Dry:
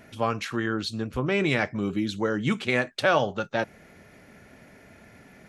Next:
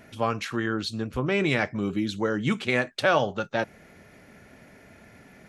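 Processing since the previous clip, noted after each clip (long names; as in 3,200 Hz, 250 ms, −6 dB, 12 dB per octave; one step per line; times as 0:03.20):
no processing that can be heard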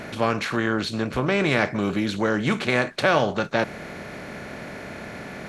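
compressor on every frequency bin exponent 0.6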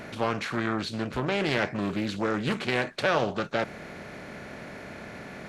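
highs frequency-modulated by the lows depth 0.4 ms
level −5 dB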